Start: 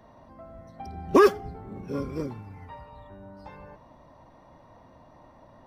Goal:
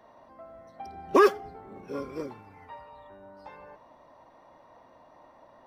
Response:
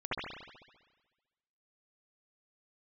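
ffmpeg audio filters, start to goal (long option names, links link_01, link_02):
-af "bass=frequency=250:gain=-14,treble=frequency=4000:gain=-3"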